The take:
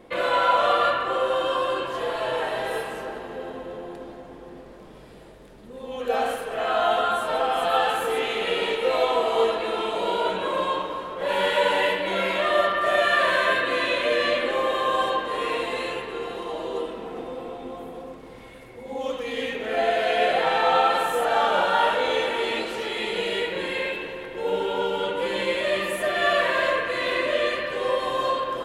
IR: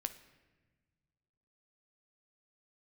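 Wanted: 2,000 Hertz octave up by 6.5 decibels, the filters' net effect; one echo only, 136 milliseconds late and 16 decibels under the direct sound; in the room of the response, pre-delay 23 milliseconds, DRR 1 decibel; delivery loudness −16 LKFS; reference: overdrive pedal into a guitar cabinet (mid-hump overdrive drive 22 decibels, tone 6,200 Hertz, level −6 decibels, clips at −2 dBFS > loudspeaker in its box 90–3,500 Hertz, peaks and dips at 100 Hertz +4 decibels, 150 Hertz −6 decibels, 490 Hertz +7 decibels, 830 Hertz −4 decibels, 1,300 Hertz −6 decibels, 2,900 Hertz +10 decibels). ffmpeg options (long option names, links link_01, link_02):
-filter_complex "[0:a]equalizer=frequency=2000:width_type=o:gain=7,aecho=1:1:136:0.158,asplit=2[link_01][link_02];[1:a]atrim=start_sample=2205,adelay=23[link_03];[link_02][link_03]afir=irnorm=-1:irlink=0,volume=0dB[link_04];[link_01][link_04]amix=inputs=2:normalize=0,asplit=2[link_05][link_06];[link_06]highpass=frequency=720:poles=1,volume=22dB,asoftclip=type=tanh:threshold=-2dB[link_07];[link_05][link_07]amix=inputs=2:normalize=0,lowpass=frequency=6200:poles=1,volume=-6dB,highpass=90,equalizer=frequency=100:width_type=q:width=4:gain=4,equalizer=frequency=150:width_type=q:width=4:gain=-6,equalizer=frequency=490:width_type=q:width=4:gain=7,equalizer=frequency=830:width_type=q:width=4:gain=-4,equalizer=frequency=1300:width_type=q:width=4:gain=-6,equalizer=frequency=2900:width_type=q:width=4:gain=10,lowpass=frequency=3500:width=0.5412,lowpass=frequency=3500:width=1.3066,volume=-8dB"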